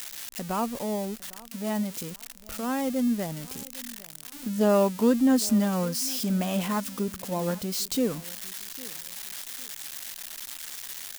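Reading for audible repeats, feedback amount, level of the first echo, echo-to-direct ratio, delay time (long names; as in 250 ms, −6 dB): 2, 28%, −21.0 dB, −20.5 dB, 805 ms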